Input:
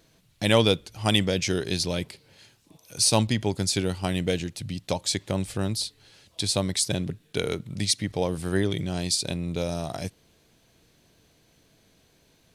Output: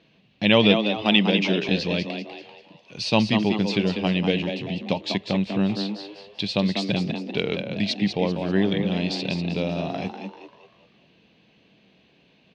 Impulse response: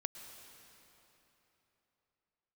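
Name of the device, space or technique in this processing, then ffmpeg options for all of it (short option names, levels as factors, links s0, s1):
frequency-shifting delay pedal into a guitar cabinet: -filter_complex "[0:a]asplit=6[s0][s1][s2][s3][s4][s5];[s1]adelay=195,afreqshift=100,volume=0.447[s6];[s2]adelay=390,afreqshift=200,volume=0.184[s7];[s3]adelay=585,afreqshift=300,volume=0.075[s8];[s4]adelay=780,afreqshift=400,volume=0.0309[s9];[s5]adelay=975,afreqshift=500,volume=0.0126[s10];[s0][s6][s7][s8][s9][s10]amix=inputs=6:normalize=0,highpass=88,equalizer=f=95:t=q:w=4:g=-9,equalizer=f=200:t=q:w=4:g=7,equalizer=f=1400:t=q:w=4:g=-5,equalizer=f=2700:t=q:w=4:g=9,lowpass=f=4000:w=0.5412,lowpass=f=4000:w=1.3066,asettb=1/sr,asplit=3[s11][s12][s13];[s11]atrim=end=1.024[s14];[s12]atrim=start=1.02:end=1.69,asetpts=PTS-STARTPTS,afade=t=in:d=0.004:c=qsin,afade=t=out:st=0.666:d=0.004:c=qsin,highpass=f=160:w=0.5412,highpass=f=160:w=1.3066[s15];[s13]atrim=start=1.686[s16];[s14][s15]acrossfade=d=0.004:c1=hsin:c2=qsin[s17];[s17][s16]acrossfade=d=0.004:c1=qsin:c2=hsin,volume=1.19"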